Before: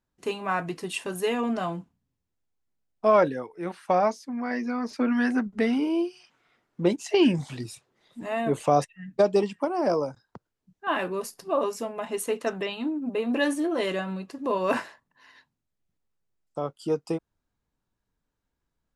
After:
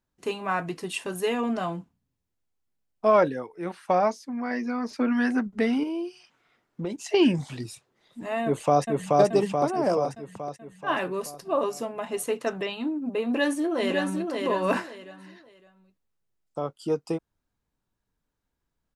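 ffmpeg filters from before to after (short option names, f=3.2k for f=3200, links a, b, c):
-filter_complex "[0:a]asettb=1/sr,asplit=3[a][b][c];[a]atrim=end=5.834[d];[b]atrim=start=5.83:end=6.96,asetpts=PTS-STARTPTS,afade=t=in:d=0.004:c=qsin,afade=t=out:st=1.126:d=0.004:c=qsin,acompressor=threshold=-28dB:ratio=4:attack=3.2:release=140:knee=1:detection=peak[e];[c]atrim=start=6.956[f];[d][e]acrossfade=d=0.004:c1=hsin:c2=qsin[g];[g][f]acrossfade=d=0.004:c1=qsin:c2=hsin,asplit=2[h][i];[i]afade=t=in:st=8.44:d=0.01,afade=t=out:st=9.19:d=0.01,aecho=0:1:430|860|1290|1720|2150|2580|3010|3440|3870:0.891251|0.534751|0.32085|0.19251|0.115506|0.0693037|0.0415822|0.0249493|0.0149696[j];[h][j]amix=inputs=2:normalize=0,asplit=2[k][l];[l]afade=t=in:st=13.26:d=0.01,afade=t=out:st=14.29:d=0.01,aecho=0:1:560|1120|1680:0.630957|0.157739|0.0394348[m];[k][m]amix=inputs=2:normalize=0"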